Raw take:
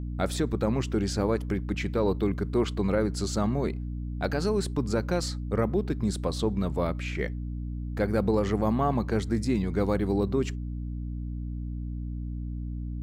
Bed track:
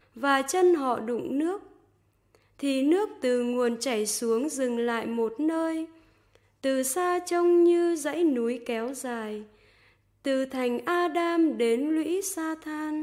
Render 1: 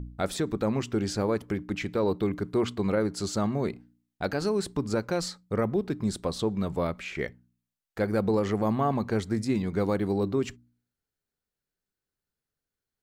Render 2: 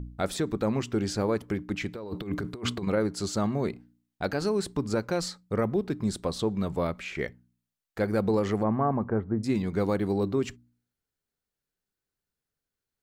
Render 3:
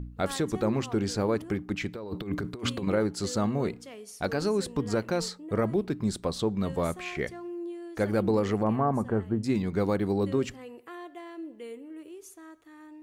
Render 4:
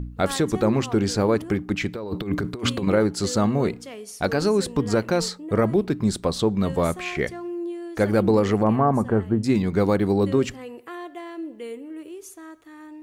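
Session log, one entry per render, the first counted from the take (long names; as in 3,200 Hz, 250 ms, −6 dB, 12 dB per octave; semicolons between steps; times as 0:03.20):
hum removal 60 Hz, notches 5
0:01.95–0:02.87: compressor whose output falls as the input rises −31 dBFS, ratio −0.5; 0:08.62–0:09.43: low-pass filter 2,100 Hz → 1,200 Hz 24 dB per octave
mix in bed track −17 dB
level +6.5 dB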